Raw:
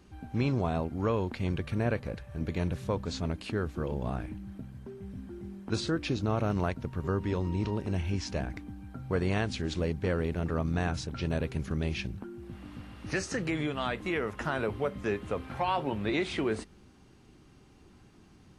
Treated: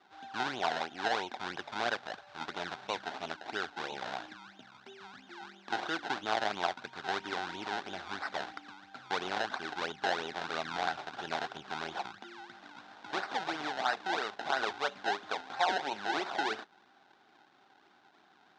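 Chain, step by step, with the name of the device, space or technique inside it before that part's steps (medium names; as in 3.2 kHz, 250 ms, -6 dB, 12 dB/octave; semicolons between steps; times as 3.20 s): circuit-bent sampling toy (decimation with a swept rate 26×, swing 100% 3 Hz; cabinet simulation 480–5700 Hz, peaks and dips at 500 Hz -6 dB, 780 Hz +10 dB, 1.5 kHz +9 dB, 3.7 kHz +7 dB); trim -2 dB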